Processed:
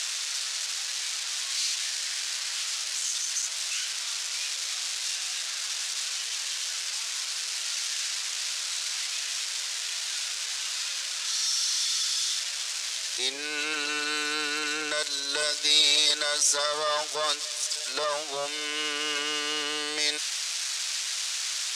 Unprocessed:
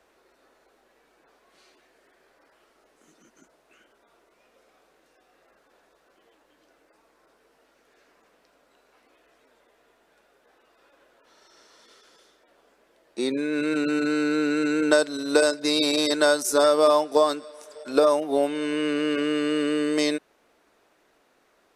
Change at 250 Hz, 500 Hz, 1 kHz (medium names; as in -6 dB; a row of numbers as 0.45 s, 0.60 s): -20.0 dB, -13.5 dB, -5.0 dB